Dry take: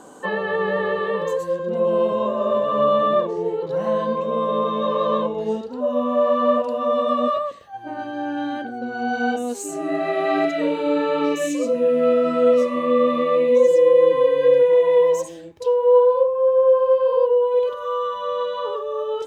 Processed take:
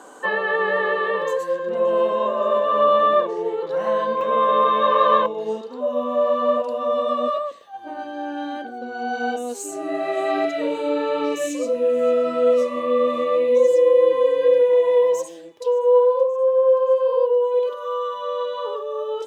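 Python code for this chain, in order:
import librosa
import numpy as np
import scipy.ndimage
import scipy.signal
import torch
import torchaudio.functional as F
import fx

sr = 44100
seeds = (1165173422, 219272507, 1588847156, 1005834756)

y = scipy.signal.sosfilt(scipy.signal.butter(2, 320.0, 'highpass', fs=sr, output='sos'), x)
y = fx.peak_eq(y, sr, hz=1700.0, db=fx.steps((0.0, 5.0), (4.21, 13.5), (5.26, -3.0)), octaves=1.5)
y = fx.echo_wet_highpass(y, sr, ms=574, feedback_pct=65, hz=2800.0, wet_db=-22.0)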